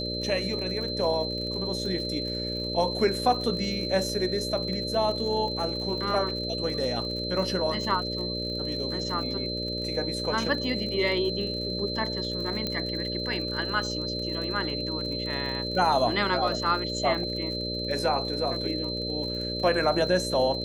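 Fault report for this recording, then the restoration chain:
buzz 60 Hz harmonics 10 -34 dBFS
crackle 54 per s -35 dBFS
whine 4.1 kHz -32 dBFS
12.67 s: pop -15 dBFS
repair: de-click; de-hum 60 Hz, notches 10; band-stop 4.1 kHz, Q 30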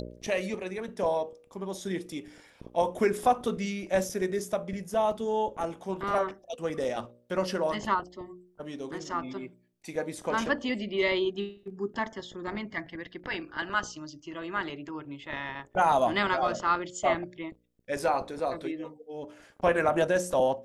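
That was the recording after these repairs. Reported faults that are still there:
12.67 s: pop

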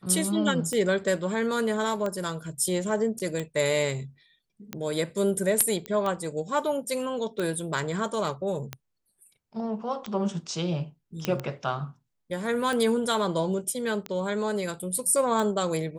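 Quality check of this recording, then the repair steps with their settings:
tick 45 rpm -17 dBFS
3.19–3.20 s: dropout 8 ms
5.86 s: pop -18 dBFS
11.25 s: pop -11 dBFS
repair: de-click; interpolate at 3.19 s, 8 ms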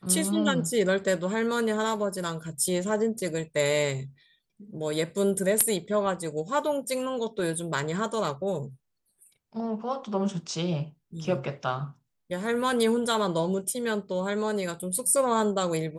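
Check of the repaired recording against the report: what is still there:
5.86 s: pop

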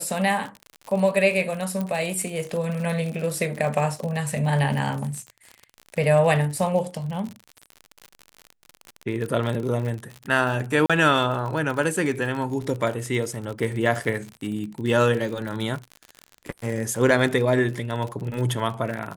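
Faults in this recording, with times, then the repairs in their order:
crackle 51 per s -29 dBFS
1.81 s: pop
10.86–10.90 s: dropout 36 ms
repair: de-click; interpolate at 10.86 s, 36 ms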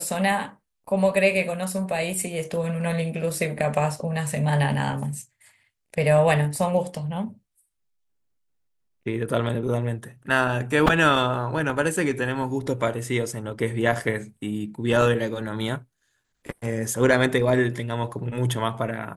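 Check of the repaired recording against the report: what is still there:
nothing left

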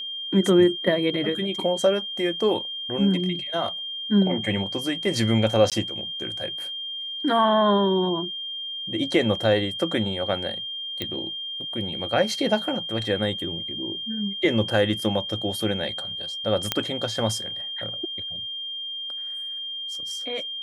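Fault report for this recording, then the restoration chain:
whine 3.2 kHz -30 dBFS
5.70–5.72 s: dropout 17 ms
11.02 s: pop -14 dBFS
16.72 s: pop -5 dBFS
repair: de-click; band-stop 3.2 kHz, Q 30; interpolate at 5.70 s, 17 ms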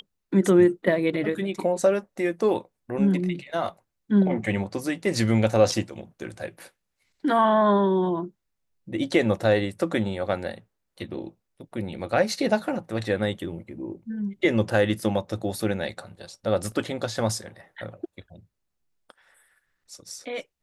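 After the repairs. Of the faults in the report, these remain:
11.02 s: pop

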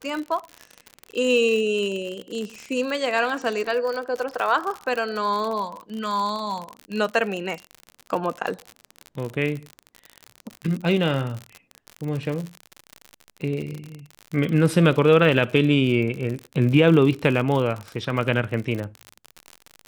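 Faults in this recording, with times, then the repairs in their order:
crackle 60 per s -27 dBFS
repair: de-click

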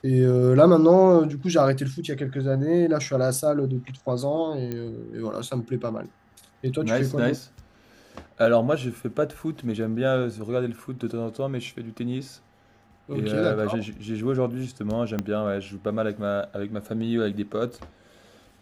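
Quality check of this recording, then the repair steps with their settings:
4.72 s: pop -18 dBFS
15.19 s: pop -14 dBFS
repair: de-click

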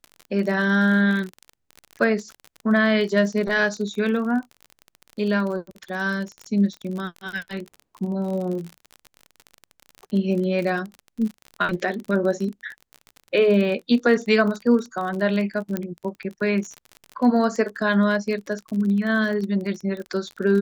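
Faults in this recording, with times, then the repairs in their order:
crackle 37 per s -29 dBFS
15.77 s: pop -12 dBFS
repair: de-click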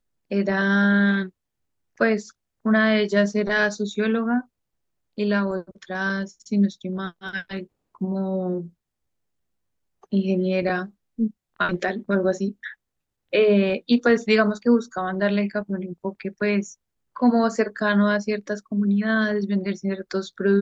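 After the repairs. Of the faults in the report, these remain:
nothing left

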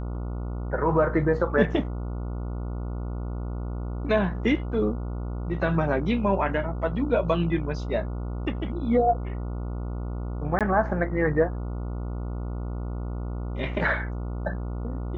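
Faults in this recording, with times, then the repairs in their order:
buzz 60 Hz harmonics 24 -31 dBFS
10.59–10.61 s: dropout 17 ms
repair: de-hum 60 Hz, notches 24; interpolate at 10.59 s, 17 ms

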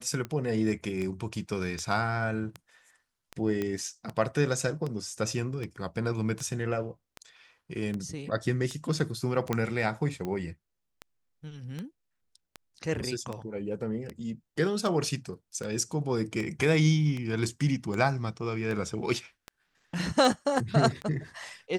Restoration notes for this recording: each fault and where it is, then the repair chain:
tick 78 rpm -22 dBFS
3.62 s: pop -18 dBFS
9.53 s: pop -14 dBFS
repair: de-click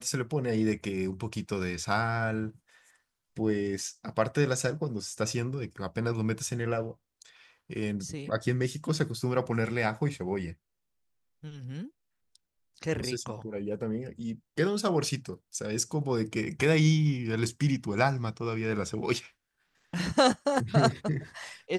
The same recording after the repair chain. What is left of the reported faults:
nothing left

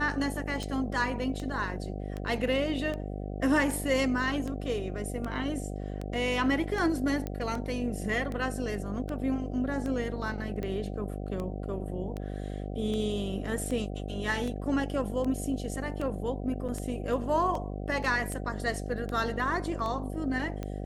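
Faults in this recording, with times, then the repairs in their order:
buzz 50 Hz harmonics 15 -36 dBFS
tick 78 rpm -23 dBFS
7.27 s: pop -21 dBFS
16.68–16.69 s: dropout 6.9 ms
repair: de-click; de-hum 50 Hz, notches 15; interpolate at 16.68 s, 6.9 ms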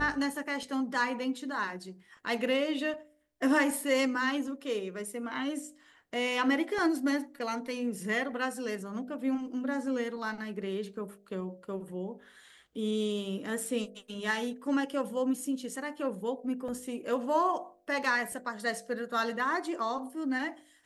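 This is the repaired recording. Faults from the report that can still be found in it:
nothing left

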